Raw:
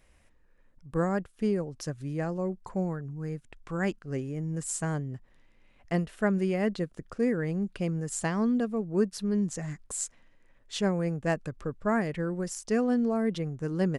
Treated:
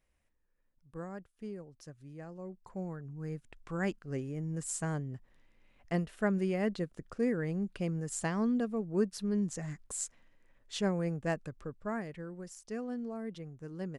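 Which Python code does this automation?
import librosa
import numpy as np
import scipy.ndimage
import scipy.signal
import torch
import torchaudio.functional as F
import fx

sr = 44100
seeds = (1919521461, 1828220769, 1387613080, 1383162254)

y = fx.gain(x, sr, db=fx.line((2.26, -15.0), (3.32, -4.0), (11.16, -4.0), (12.28, -12.5)))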